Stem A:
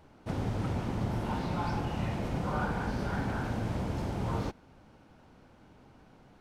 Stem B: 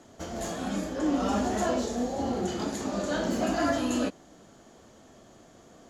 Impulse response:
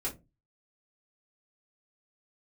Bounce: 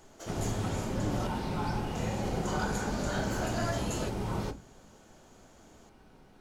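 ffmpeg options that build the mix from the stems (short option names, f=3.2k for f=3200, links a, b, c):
-filter_complex "[0:a]volume=-4.5dB,asplit=2[a][b];[b]volume=-5dB[c];[1:a]highpass=f=340:w=0.5412,highpass=f=340:w=1.3066,volume=-7dB,asplit=3[d][e][f];[d]atrim=end=1.27,asetpts=PTS-STARTPTS,afade=t=out:st=1.266:d=0.004:c=hsin[g];[e]atrim=start=1.27:end=1.95,asetpts=PTS-STARTPTS,volume=0[h];[f]atrim=start=1.95,asetpts=PTS-STARTPTS,afade=t=in:d=0.004:c=hsin[i];[g][h][i]concat=n=3:v=0:a=1[j];[2:a]atrim=start_sample=2205[k];[c][k]afir=irnorm=-1:irlink=0[l];[a][j][l]amix=inputs=3:normalize=0,highshelf=f=4.7k:g=8"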